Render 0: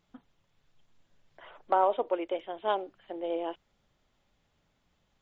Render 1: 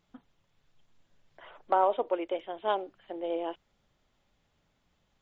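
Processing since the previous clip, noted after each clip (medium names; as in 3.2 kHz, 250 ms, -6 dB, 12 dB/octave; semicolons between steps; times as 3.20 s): no audible change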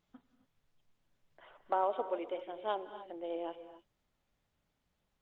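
gated-style reverb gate 300 ms rising, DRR 10.5 dB; trim -6.5 dB; Opus 48 kbps 48 kHz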